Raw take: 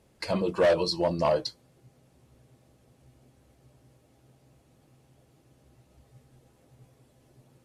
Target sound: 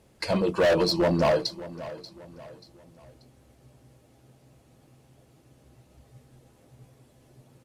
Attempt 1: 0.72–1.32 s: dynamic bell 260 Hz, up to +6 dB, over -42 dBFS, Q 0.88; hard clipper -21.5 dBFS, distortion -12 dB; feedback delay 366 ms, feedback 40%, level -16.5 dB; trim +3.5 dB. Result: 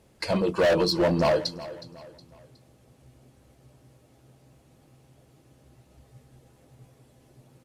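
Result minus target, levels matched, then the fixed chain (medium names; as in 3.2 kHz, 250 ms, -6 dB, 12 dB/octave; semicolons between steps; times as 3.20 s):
echo 219 ms early
0.72–1.32 s: dynamic bell 260 Hz, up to +6 dB, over -42 dBFS, Q 0.88; hard clipper -21.5 dBFS, distortion -12 dB; feedback delay 585 ms, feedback 40%, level -16.5 dB; trim +3.5 dB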